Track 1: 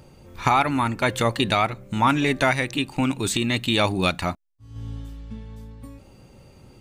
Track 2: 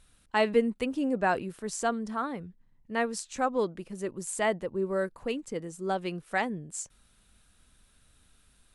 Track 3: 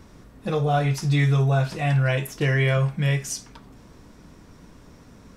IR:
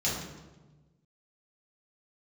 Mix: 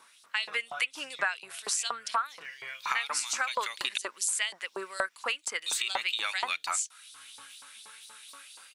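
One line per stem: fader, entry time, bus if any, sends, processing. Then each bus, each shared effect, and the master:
-1.0 dB, 2.45 s, muted 3.98–5.66 s, no send, vibrato 3.1 Hz 21 cents
+2.5 dB, 0.00 s, no send, bass shelf 490 Hz -7 dB; level rider gain up to 12.5 dB
-5.5 dB, 0.00 s, no send, bass shelf 320 Hz +6.5 dB; compression 6:1, threshold -23 dBFS, peak gain reduction 11 dB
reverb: none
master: peaking EQ 1.8 kHz -4 dB 0.22 oct; LFO high-pass saw up 4.2 Hz 910–4900 Hz; compression 5:1, threshold -28 dBFS, peak gain reduction 17.5 dB

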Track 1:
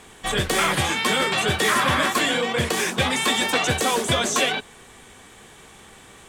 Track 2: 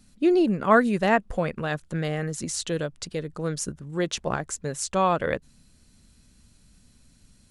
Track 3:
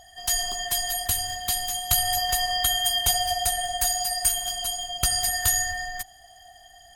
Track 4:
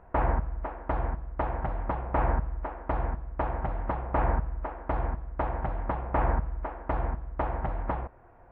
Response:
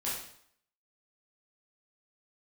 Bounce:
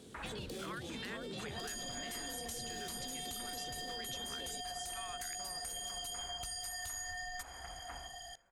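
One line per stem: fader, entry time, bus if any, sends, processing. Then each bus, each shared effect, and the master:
-15.5 dB, 0.00 s, bus B, no send, no echo send, graphic EQ 125/250/500/1000/2000/4000/8000 Hz +12/+10/+11/-11/-10/+8/-3 dB; peak limiter -17 dBFS, peak gain reduction 17 dB
-5.0 dB, 0.00 s, bus A, no send, echo send -21.5 dB, none
0.0 dB, 1.40 s, bus B, send -22.5 dB, no echo send, low-pass 9.2 kHz 12 dB/octave; compression 3:1, threshold -35 dBFS, peak gain reduction 12 dB
-7.5 dB, 0.00 s, bus A, send -20.5 dB, no echo send, none
bus A: 0.0 dB, high-pass 1.4 kHz 24 dB/octave; compression 2.5:1, threshold -40 dBFS, peak gain reduction 10.5 dB
bus B: 0.0 dB, treble shelf 4.7 kHz +5 dB; peak limiter -26 dBFS, peak gain reduction 9 dB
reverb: on, RT60 0.65 s, pre-delay 7 ms
echo: feedback delay 437 ms, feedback 57%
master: compression 6:1, threshold -40 dBFS, peak gain reduction 9.5 dB

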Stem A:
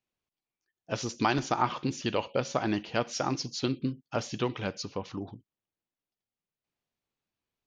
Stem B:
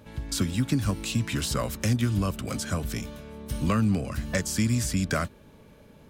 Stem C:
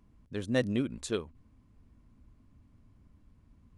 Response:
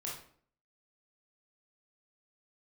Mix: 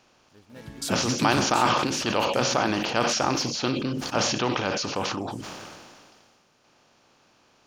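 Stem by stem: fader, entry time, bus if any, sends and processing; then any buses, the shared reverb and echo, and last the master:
+2.0 dB, 0.00 s, no send, spectral levelling over time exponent 0.6; bass shelf 380 Hz -5.5 dB; decay stretcher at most 27 dB/s
1.61 s -1.5 dB -> 2.00 s -11 dB -> 4.18 s -11 dB -> 4.57 s -23 dB, 0.50 s, no send, high-pass 140 Hz 12 dB/octave
-19.0 dB, 0.00 s, no send, dead-time distortion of 0.16 ms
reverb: none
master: none

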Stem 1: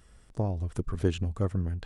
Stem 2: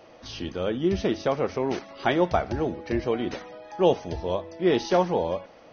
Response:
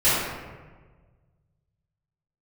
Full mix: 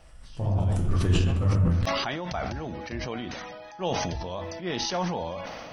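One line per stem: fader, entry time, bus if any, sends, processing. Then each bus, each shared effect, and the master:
-4.5 dB, 0.00 s, send -11 dB, none
-4.5 dB, 0.00 s, no send, treble shelf 7.2 kHz +6 dB; decay stretcher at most 48 dB/s; auto duck -14 dB, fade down 0.25 s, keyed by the first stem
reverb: on, RT60 1.4 s, pre-delay 3 ms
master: peaking EQ 400 Hz -9.5 dB 1.1 oct; decay stretcher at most 23 dB/s

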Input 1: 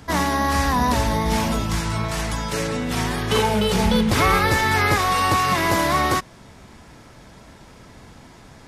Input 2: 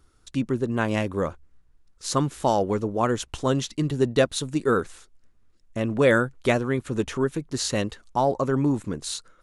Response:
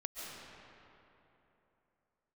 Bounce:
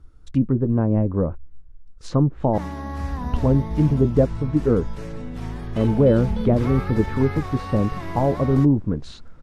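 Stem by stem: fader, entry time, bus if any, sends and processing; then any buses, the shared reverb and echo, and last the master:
-14.5 dB, 2.45 s, no send, none
0.0 dB, 0.00 s, muted 2.58–3.20 s, no send, band-stop 380 Hz, Q 12; low-pass that closes with the level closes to 730 Hz, closed at -21 dBFS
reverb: none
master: tilt EQ -3 dB/octave

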